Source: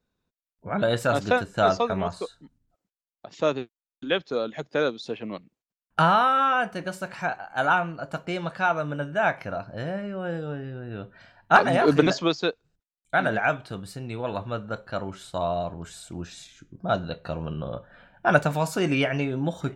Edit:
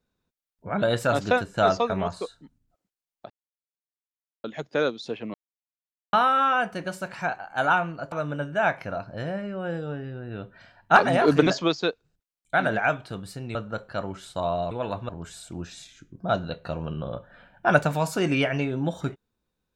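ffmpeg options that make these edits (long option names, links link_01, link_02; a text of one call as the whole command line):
ffmpeg -i in.wav -filter_complex "[0:a]asplit=9[link_01][link_02][link_03][link_04][link_05][link_06][link_07][link_08][link_09];[link_01]atrim=end=3.3,asetpts=PTS-STARTPTS,afade=type=out:start_time=3.296:duration=0.004:curve=hsin[link_10];[link_02]atrim=start=3.3:end=4.44,asetpts=PTS-STARTPTS,volume=0[link_11];[link_03]atrim=start=4.44:end=5.34,asetpts=PTS-STARTPTS,afade=type=in:duration=0.004:curve=hsin,afade=type=out:start_time=0.896:duration=0.004:curve=hsin[link_12];[link_04]atrim=start=5.34:end=6.13,asetpts=PTS-STARTPTS,volume=0[link_13];[link_05]atrim=start=6.13:end=8.122,asetpts=PTS-STARTPTS,afade=type=in:duration=0.004:curve=hsin[link_14];[link_06]atrim=start=8.718:end=14.152[link_15];[link_07]atrim=start=14.528:end=15.692[link_16];[link_08]atrim=start=14.148:end=14.532[link_17];[link_09]atrim=start=15.688[link_18];[link_10][link_11][link_12][link_13][link_14]concat=n=5:v=0:a=1[link_19];[link_19][link_15]acrossfade=duration=0.004:curve1=hsin:curve2=hsin[link_20];[link_20][link_16]acrossfade=duration=0.004:curve1=hsin:curve2=hsin[link_21];[link_21][link_17]acrossfade=duration=0.004:curve1=hsin:curve2=hsin[link_22];[link_22][link_18]acrossfade=duration=0.004:curve1=hsin:curve2=hsin" out.wav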